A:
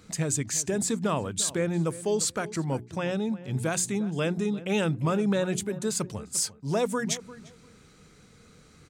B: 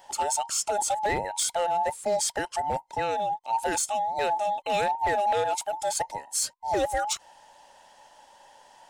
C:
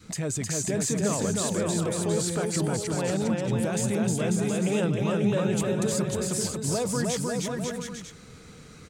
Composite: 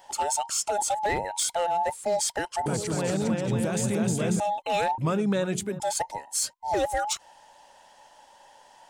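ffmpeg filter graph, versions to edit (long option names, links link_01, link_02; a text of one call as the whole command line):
ffmpeg -i take0.wav -i take1.wav -i take2.wav -filter_complex "[1:a]asplit=3[link_01][link_02][link_03];[link_01]atrim=end=2.662[link_04];[2:a]atrim=start=2.658:end=4.402[link_05];[link_02]atrim=start=4.398:end=4.982[link_06];[0:a]atrim=start=4.978:end=5.802[link_07];[link_03]atrim=start=5.798[link_08];[link_04][link_05]acrossfade=duration=0.004:curve1=hsin:curve2=hsin[link_09];[link_09][link_06]acrossfade=duration=0.004:curve1=hsin:curve2=hsin[link_10];[link_10][link_07]acrossfade=duration=0.004:curve1=hsin:curve2=hsin[link_11];[link_11][link_08]acrossfade=duration=0.004:curve1=hsin:curve2=hsin" out.wav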